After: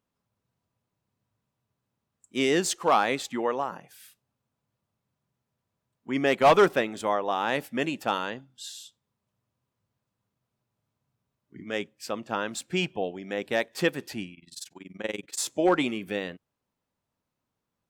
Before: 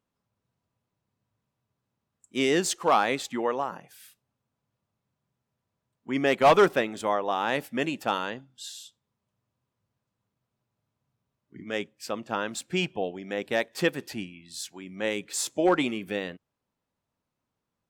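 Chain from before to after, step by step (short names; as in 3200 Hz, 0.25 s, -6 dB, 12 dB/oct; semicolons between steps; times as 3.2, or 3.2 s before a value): 14.34–15.38 AM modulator 21 Hz, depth 90%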